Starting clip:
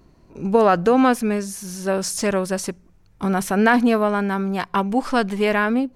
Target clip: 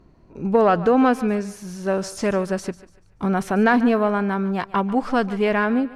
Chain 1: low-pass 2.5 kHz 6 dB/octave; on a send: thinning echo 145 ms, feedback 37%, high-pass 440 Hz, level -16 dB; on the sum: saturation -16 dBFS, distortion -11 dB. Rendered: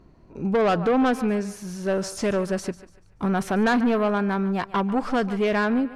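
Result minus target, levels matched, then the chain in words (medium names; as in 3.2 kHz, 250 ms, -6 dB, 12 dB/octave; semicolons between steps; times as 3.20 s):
saturation: distortion +16 dB
low-pass 2.5 kHz 6 dB/octave; on a send: thinning echo 145 ms, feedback 37%, high-pass 440 Hz, level -16 dB; on the sum: saturation -4.5 dBFS, distortion -27 dB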